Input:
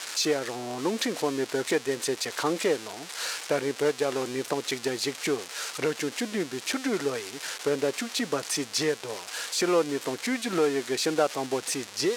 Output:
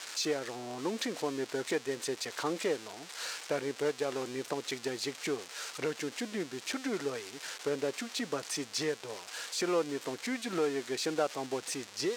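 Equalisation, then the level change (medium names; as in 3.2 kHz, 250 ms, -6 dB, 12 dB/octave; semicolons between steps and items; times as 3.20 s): peaking EQ 11 kHz -6 dB 0.34 oct; -6.5 dB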